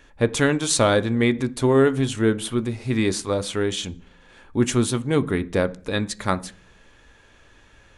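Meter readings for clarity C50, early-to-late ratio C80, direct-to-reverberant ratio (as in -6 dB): 20.5 dB, 25.0 dB, 11.0 dB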